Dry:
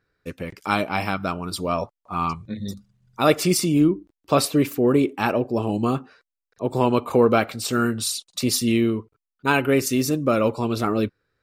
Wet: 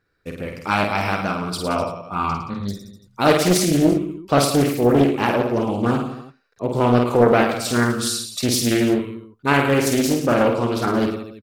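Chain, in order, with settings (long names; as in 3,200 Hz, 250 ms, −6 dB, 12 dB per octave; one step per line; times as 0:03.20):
reverse bouncing-ball delay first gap 50 ms, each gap 1.15×, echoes 5
highs frequency-modulated by the lows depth 0.53 ms
level +1 dB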